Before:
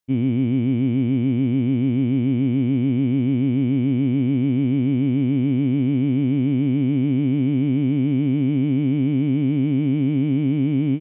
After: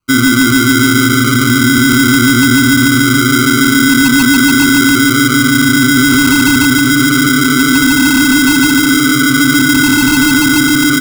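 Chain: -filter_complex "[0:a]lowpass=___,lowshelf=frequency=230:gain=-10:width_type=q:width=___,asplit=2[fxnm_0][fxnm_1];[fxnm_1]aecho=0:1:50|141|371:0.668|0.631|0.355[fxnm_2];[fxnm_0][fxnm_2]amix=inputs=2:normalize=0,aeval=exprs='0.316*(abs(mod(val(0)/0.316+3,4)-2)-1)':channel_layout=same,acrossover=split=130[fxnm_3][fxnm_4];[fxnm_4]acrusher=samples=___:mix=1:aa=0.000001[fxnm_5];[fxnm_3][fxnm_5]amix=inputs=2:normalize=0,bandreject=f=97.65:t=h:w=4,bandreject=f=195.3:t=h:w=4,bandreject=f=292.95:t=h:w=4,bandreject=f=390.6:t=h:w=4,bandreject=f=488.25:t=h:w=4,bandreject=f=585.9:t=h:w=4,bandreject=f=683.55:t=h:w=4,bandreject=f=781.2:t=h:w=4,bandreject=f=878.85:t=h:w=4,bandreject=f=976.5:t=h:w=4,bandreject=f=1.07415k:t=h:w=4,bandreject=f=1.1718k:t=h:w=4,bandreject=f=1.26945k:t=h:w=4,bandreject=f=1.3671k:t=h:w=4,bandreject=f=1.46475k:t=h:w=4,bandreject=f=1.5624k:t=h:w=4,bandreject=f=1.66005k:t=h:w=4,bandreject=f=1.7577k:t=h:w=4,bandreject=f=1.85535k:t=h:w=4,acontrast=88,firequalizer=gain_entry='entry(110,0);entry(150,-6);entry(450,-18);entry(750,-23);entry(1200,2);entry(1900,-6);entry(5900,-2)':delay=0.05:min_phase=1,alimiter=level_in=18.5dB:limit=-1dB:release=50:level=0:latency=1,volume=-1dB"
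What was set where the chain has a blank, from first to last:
1.8k, 3, 25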